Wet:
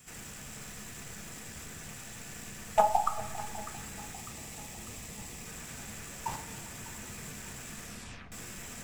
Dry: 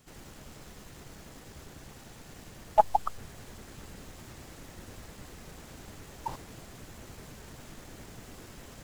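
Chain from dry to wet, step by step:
0:04.13–0:05.46: parametric band 1,500 Hz −9 dB 0.46 octaves
echo with a time of its own for lows and highs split 820 Hz, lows 398 ms, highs 599 ms, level −15.5 dB
0:07.81: tape stop 0.51 s
convolution reverb RT60 1.0 s, pre-delay 3 ms, DRR 6.5 dB
level +5.5 dB

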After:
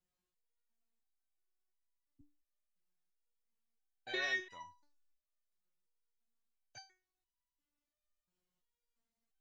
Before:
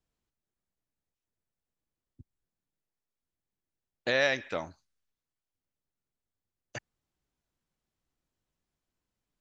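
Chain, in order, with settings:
step-sequenced resonator 2.9 Hz 180–980 Hz
level +8 dB

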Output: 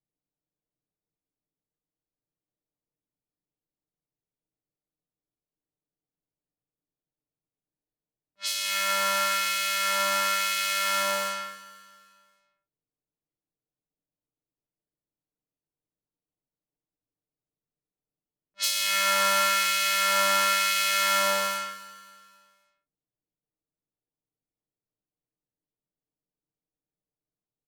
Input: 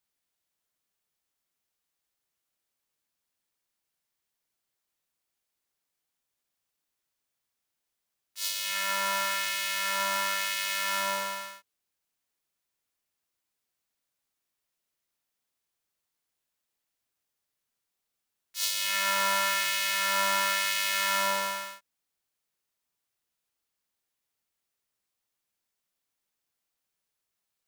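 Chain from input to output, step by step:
comb filter 6.6 ms, depth 54%
low-pass that shuts in the quiet parts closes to 410 Hz, open at −26.5 dBFS
repeating echo 266 ms, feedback 45%, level −17 dB
level +2.5 dB

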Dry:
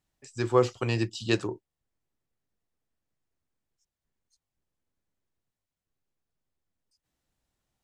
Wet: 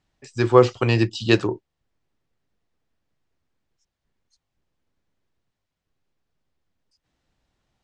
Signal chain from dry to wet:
low-pass filter 5,100 Hz 12 dB per octave
level +8.5 dB

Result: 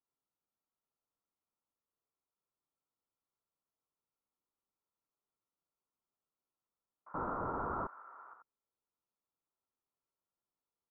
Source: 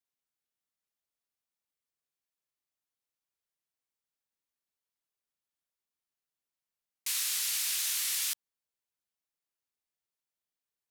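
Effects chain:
on a send: single-tap delay 85 ms −5.5 dB
0:07.14–0:07.87: on the sum: leveller curve on the samples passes 5
Chebyshev low-pass with heavy ripple 1,400 Hz, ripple 3 dB
level +3.5 dB

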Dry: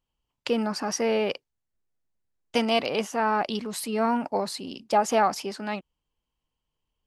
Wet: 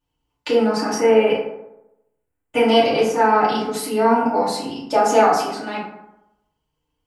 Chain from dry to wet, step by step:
0:00.94–0:02.62: flat-topped bell 4,700 Hz −15.5 dB 1 octave
feedback delay network reverb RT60 0.89 s, low-frequency decay 0.95×, high-frequency decay 0.45×, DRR −9.5 dB
level −2.5 dB

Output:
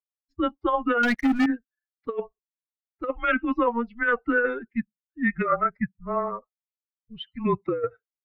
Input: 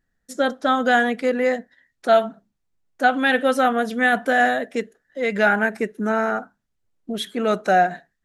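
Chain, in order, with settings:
spectral dynamics exaggerated over time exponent 2
notch filter 1,900 Hz, Q 29
compressor whose output falls as the input rises −22 dBFS, ratio −0.5
single-sideband voice off tune −240 Hz 440–2,800 Hz
0:01.03–0:01.46: leveller curve on the samples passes 3
level +2 dB

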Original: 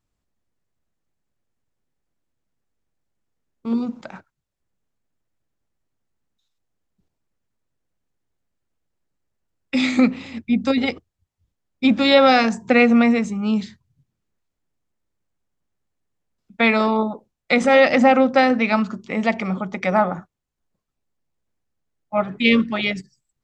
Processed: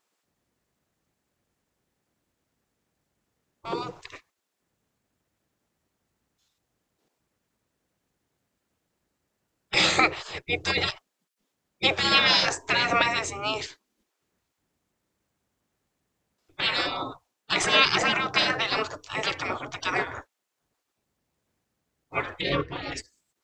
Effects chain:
gate on every frequency bin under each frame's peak −20 dB weak
0:22.41–0:22.92: low-pass filter 1,300 Hz 6 dB per octave
level +8 dB

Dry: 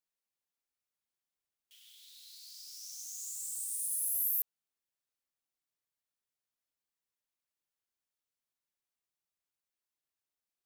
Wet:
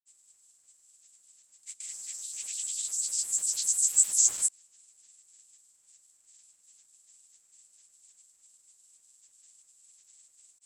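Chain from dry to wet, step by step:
compressor on every frequency bin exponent 0.6
granular cloud, pitch spread up and down by 12 semitones
low-pass with resonance 7,700 Hz, resonance Q 11

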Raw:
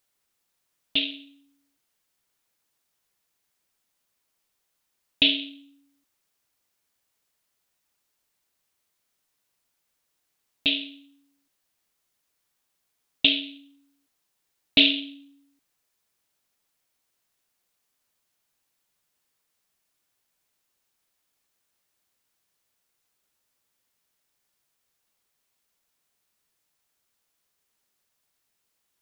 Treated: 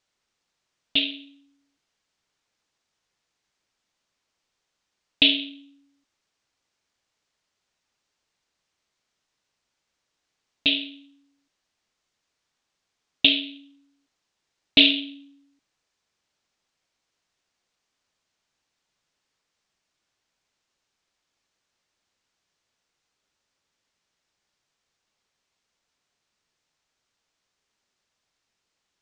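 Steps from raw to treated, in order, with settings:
low-pass filter 6,800 Hz 24 dB per octave
level +2 dB

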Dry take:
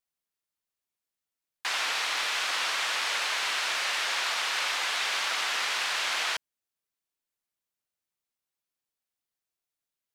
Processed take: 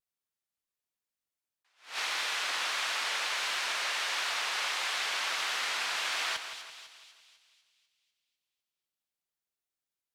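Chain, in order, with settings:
pitch vibrato 1.5 Hz 41 cents
echo with a time of its own for lows and highs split 2,700 Hz, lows 168 ms, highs 249 ms, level −9 dB
level that may rise only so fast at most 170 dB per second
level −4 dB

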